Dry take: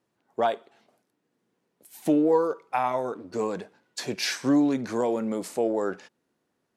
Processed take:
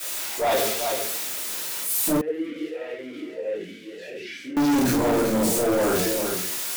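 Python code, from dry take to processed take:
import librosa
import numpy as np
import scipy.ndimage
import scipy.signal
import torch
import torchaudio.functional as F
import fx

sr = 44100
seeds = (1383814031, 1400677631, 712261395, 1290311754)

y = x + 0.5 * 10.0 ** (-25.5 / 20.0) * np.diff(np.sign(x), prepend=np.sign(x[:1]))
y = fx.transient(y, sr, attack_db=-10, sustain_db=8)
y = y + 10.0 ** (-10.0 / 20.0) * np.pad(y, (int(384 * sr / 1000.0), 0))[:len(y)]
y = fx.room_shoebox(y, sr, seeds[0], volume_m3=68.0, walls='mixed', distance_m=2.7)
y = 10.0 ** (-16.0 / 20.0) * np.tanh(y / 10.0 ** (-16.0 / 20.0))
y = fx.vowel_sweep(y, sr, vowels='e-i', hz=1.6, at=(2.21, 4.57))
y = y * librosa.db_to_amplitude(-2.0)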